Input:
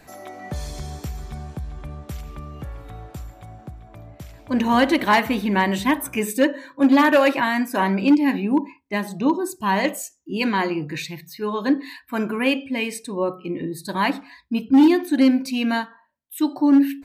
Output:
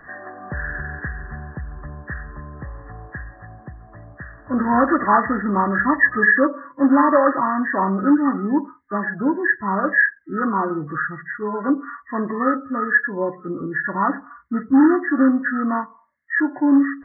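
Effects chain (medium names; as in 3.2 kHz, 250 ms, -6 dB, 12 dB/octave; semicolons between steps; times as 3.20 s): knee-point frequency compression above 1 kHz 4:1; small resonant body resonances 1.7 kHz, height 14 dB, ringing for 25 ms; 9.03–9.99 s: dynamic bell 870 Hz, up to -4 dB, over -33 dBFS, Q 1.9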